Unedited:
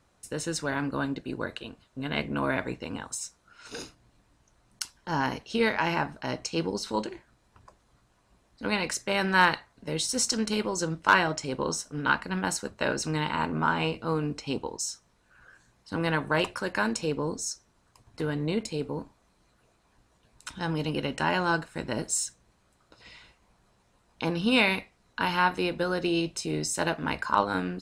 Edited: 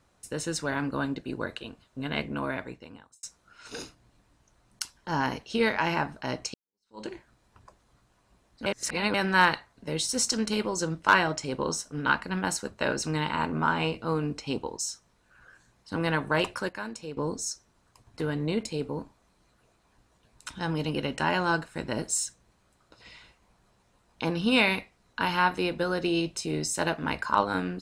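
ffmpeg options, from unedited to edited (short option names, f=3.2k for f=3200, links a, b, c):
-filter_complex "[0:a]asplit=7[a][b][c][d][e][f][g];[a]atrim=end=3.23,asetpts=PTS-STARTPTS,afade=t=out:st=2.06:d=1.17[h];[b]atrim=start=3.23:end=6.54,asetpts=PTS-STARTPTS,afade=t=in:d=0.004:c=hsin,afade=t=out:st=3.306:d=0.004:c=hsin[i];[c]atrim=start=6.54:end=8.662,asetpts=PTS-STARTPTS,afade=t=in:d=0.52:c=exp[j];[d]atrim=start=8.658:end=9.142,asetpts=PTS-STARTPTS,areverse[k];[e]atrim=start=9.138:end=16.692[l];[f]atrim=start=16.688:end=17.172,asetpts=PTS-STARTPTS,volume=-9.5dB[m];[g]atrim=start=17.168[n];[h][i][j]concat=n=3:v=0:a=1[o];[o][k]acrossfade=d=0.004:c1=hsin:c2=hsin[p];[p][l]acrossfade=d=0.004:c1=hsin:c2=hsin[q];[q][m]acrossfade=d=0.004:c1=hsin:c2=hsin[r];[r][n]acrossfade=d=0.004:c1=hsin:c2=hsin"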